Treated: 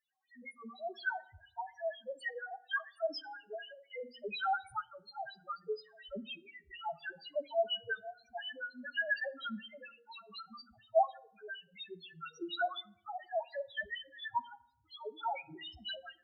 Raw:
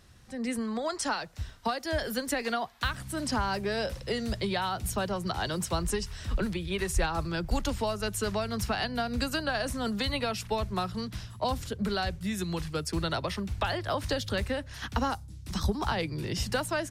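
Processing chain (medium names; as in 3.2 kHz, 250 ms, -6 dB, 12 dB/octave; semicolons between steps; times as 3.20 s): treble shelf 10 kHz +7 dB; band-stop 980 Hz, Q 7.8; de-hum 56.72 Hz, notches 9; wah-wah 4 Hz 670–3400 Hz, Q 2.7; tremolo saw up 0.6 Hz, depth 90%; in parallel at -11.5 dB: crossover distortion -52.5 dBFS; on the sum: loudest bins only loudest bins 1; FDN reverb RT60 0.69 s, low-frequency decay 1.6×, high-frequency decay 0.6×, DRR 17 dB; speed mistake 24 fps film run at 25 fps; trim +14.5 dB; Opus 96 kbps 48 kHz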